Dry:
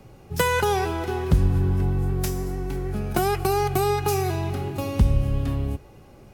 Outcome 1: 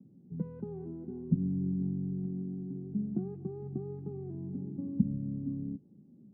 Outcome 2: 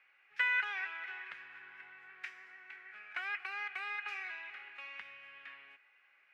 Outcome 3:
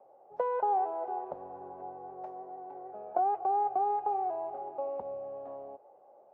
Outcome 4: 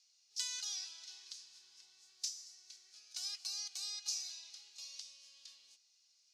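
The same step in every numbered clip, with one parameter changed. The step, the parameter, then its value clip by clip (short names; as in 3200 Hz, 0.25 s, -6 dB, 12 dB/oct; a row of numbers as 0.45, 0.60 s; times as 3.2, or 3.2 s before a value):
Butterworth band-pass, frequency: 210, 2000, 680, 5300 Hz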